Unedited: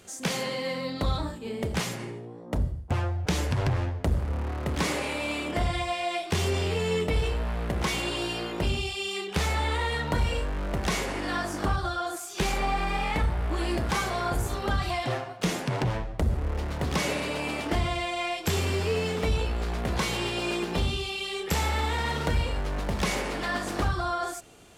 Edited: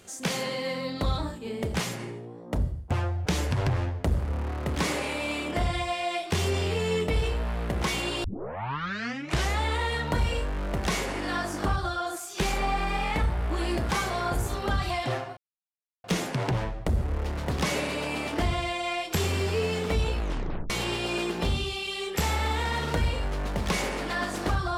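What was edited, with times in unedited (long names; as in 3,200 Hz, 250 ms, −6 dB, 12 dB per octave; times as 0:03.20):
0:08.24: tape start 1.37 s
0:15.37: splice in silence 0.67 s
0:19.52: tape stop 0.51 s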